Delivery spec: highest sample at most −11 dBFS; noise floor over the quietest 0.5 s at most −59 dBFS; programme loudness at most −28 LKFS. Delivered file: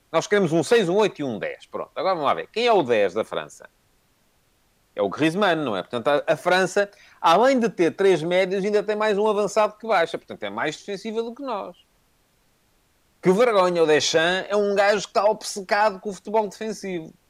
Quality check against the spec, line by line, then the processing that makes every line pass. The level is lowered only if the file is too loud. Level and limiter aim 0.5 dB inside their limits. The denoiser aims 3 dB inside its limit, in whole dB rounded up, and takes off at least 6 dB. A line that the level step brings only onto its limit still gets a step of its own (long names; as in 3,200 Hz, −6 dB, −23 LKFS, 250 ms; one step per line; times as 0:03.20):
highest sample −6.5 dBFS: out of spec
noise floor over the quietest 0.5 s −64 dBFS: in spec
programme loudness −22.0 LKFS: out of spec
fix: level −6.5 dB